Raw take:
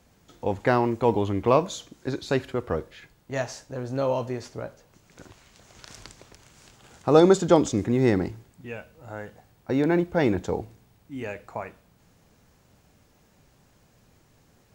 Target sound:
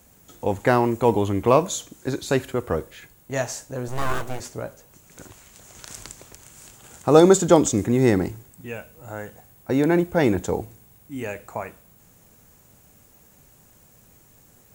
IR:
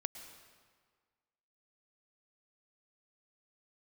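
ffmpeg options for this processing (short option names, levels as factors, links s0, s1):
-filter_complex "[0:a]asettb=1/sr,asplit=3[s0][s1][s2];[s0]atrim=end=3.884[s3];[s1]atrim=start=3.88:end=4.4,asetpts=PTS-STARTPTS,afade=t=in:d=0.004:c=qsin,afade=t=out:st=0.516:d=0.004:c=qsin,aeval=exprs='abs(val(0))':c=same[s4];[s2]atrim=start=4.396[s5];[s3][s4]acrossfade=d=0.004:c1=hsin:c2=qsin[s6];[s6][s5]acrossfade=d=0.004:c1=qsin:c2=hsin,aexciter=amount=2.3:drive=8.5:freq=6800,volume=1.41"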